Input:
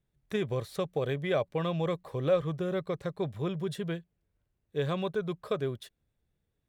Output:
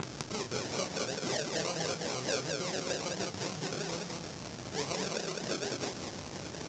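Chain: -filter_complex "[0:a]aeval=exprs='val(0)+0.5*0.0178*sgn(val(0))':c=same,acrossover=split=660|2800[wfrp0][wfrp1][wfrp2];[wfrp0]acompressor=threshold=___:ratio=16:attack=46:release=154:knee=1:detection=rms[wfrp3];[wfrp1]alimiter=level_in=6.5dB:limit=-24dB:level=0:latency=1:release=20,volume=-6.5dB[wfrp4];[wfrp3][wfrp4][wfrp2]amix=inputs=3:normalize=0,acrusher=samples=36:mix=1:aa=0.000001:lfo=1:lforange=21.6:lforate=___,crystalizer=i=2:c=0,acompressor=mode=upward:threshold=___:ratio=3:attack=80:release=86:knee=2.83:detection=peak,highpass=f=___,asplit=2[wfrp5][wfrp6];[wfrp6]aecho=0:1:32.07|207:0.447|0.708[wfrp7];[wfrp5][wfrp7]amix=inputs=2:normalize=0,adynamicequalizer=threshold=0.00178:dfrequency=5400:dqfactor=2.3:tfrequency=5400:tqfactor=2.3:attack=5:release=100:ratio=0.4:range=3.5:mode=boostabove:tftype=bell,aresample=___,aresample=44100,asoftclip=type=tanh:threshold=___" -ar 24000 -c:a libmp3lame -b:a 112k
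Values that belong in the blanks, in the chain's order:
-42dB, 2.2, -41dB, 140, 16000, -12.5dB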